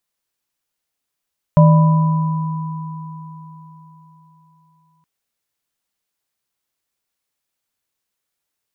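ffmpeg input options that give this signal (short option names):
-f lavfi -i "aevalsrc='0.531*pow(10,-3*t/3.78)*sin(2*PI*159*t)+0.211*pow(10,-3*t/1.26)*sin(2*PI*594*t)+0.141*pow(10,-3*t/4.71)*sin(2*PI*991*t)':d=3.47:s=44100"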